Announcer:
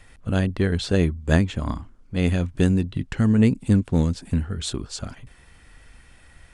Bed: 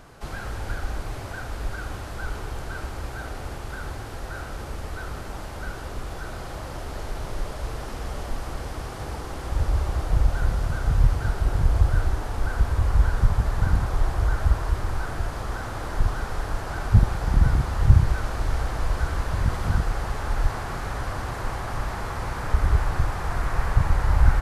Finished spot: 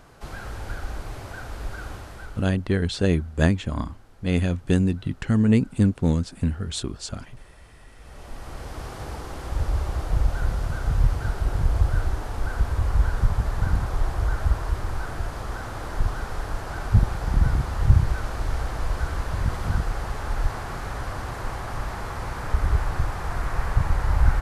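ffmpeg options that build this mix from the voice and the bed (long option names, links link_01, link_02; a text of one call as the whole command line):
ffmpeg -i stem1.wav -i stem2.wav -filter_complex "[0:a]adelay=2100,volume=-1dB[link_01];[1:a]volume=16dB,afade=type=out:start_time=1.89:duration=0.67:silence=0.133352,afade=type=in:start_time=7.96:duration=0.89:silence=0.11885[link_02];[link_01][link_02]amix=inputs=2:normalize=0" out.wav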